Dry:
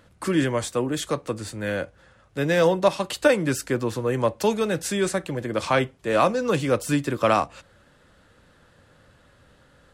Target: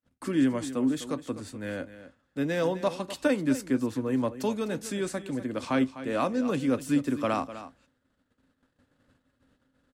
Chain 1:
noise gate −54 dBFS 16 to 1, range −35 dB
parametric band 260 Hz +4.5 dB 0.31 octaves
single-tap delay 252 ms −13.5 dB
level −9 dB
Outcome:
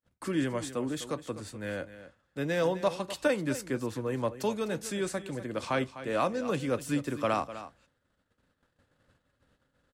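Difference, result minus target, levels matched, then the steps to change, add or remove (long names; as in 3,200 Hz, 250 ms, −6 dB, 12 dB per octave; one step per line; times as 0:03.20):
250 Hz band −3.5 dB
change: parametric band 260 Hz +15.5 dB 0.31 octaves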